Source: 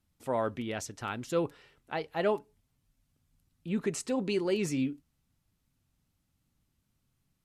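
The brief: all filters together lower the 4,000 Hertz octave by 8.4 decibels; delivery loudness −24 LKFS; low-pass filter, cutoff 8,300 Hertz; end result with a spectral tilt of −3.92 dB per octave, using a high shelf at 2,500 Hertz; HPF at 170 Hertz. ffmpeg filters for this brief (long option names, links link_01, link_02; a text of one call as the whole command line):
ffmpeg -i in.wav -af "highpass=170,lowpass=8300,highshelf=frequency=2500:gain=-3.5,equalizer=frequency=4000:width_type=o:gain=-9,volume=10dB" out.wav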